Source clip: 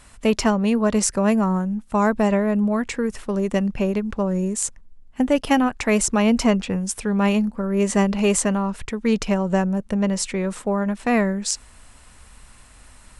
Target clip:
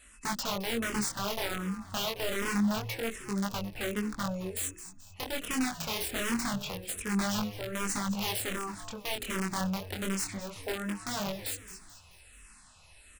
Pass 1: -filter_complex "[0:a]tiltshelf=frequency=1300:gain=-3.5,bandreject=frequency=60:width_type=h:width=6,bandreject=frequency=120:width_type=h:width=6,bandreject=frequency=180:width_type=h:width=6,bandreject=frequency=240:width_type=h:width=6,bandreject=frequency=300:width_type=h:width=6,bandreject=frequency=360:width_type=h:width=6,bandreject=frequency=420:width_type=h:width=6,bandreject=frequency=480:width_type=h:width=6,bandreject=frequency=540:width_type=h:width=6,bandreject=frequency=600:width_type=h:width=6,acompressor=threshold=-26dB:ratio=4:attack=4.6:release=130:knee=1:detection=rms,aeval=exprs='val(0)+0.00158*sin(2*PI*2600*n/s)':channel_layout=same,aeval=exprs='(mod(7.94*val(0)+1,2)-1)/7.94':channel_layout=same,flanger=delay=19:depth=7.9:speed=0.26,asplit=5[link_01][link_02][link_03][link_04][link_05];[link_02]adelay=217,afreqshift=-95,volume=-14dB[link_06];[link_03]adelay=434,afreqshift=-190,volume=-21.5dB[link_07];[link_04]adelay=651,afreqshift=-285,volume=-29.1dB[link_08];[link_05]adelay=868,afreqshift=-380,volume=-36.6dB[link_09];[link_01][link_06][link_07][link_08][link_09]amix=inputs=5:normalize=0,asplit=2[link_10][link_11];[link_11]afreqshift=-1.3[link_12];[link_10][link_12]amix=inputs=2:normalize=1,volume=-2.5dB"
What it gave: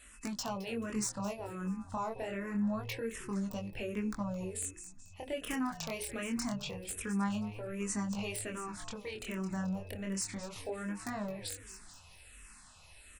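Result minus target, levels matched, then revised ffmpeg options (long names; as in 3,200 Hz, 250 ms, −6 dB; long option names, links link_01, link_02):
downward compressor: peak gain reduction +5.5 dB
-filter_complex "[0:a]tiltshelf=frequency=1300:gain=-3.5,bandreject=frequency=60:width_type=h:width=6,bandreject=frequency=120:width_type=h:width=6,bandreject=frequency=180:width_type=h:width=6,bandreject=frequency=240:width_type=h:width=6,bandreject=frequency=300:width_type=h:width=6,bandreject=frequency=360:width_type=h:width=6,bandreject=frequency=420:width_type=h:width=6,bandreject=frequency=480:width_type=h:width=6,bandreject=frequency=540:width_type=h:width=6,bandreject=frequency=600:width_type=h:width=6,acompressor=threshold=-18.5dB:ratio=4:attack=4.6:release=130:knee=1:detection=rms,aeval=exprs='val(0)+0.00158*sin(2*PI*2600*n/s)':channel_layout=same,aeval=exprs='(mod(7.94*val(0)+1,2)-1)/7.94':channel_layout=same,flanger=delay=19:depth=7.9:speed=0.26,asplit=5[link_01][link_02][link_03][link_04][link_05];[link_02]adelay=217,afreqshift=-95,volume=-14dB[link_06];[link_03]adelay=434,afreqshift=-190,volume=-21.5dB[link_07];[link_04]adelay=651,afreqshift=-285,volume=-29.1dB[link_08];[link_05]adelay=868,afreqshift=-380,volume=-36.6dB[link_09];[link_01][link_06][link_07][link_08][link_09]amix=inputs=5:normalize=0,asplit=2[link_10][link_11];[link_11]afreqshift=-1.3[link_12];[link_10][link_12]amix=inputs=2:normalize=1,volume=-2.5dB"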